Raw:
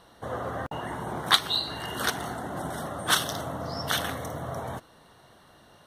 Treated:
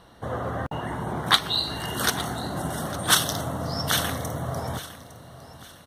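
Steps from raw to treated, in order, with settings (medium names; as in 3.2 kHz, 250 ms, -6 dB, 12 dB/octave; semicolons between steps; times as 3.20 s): tone controls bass +5 dB, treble -2 dB, from 1.57 s treble +5 dB; feedback delay 857 ms, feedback 35%, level -16 dB; trim +2 dB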